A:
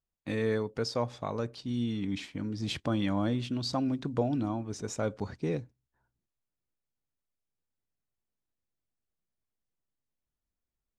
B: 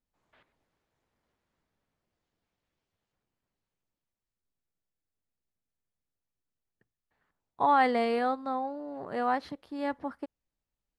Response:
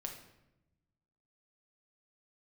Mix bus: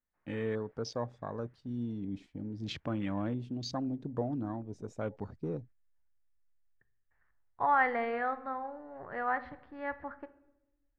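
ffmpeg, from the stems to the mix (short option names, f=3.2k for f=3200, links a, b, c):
-filter_complex "[0:a]afwtdn=0.00794,volume=-5dB,asplit=2[a][b];[1:a]asubboost=boost=7:cutoff=77,lowpass=f=1.8k:t=q:w=2.8,volume=2dB,asplit=2[c][d];[d]volume=-15.5dB[e];[b]apad=whole_len=484299[f];[c][f]sidechaingate=range=-11dB:threshold=-52dB:ratio=16:detection=peak[g];[2:a]atrim=start_sample=2205[h];[e][h]afir=irnorm=-1:irlink=0[i];[a][g][i]amix=inputs=3:normalize=0"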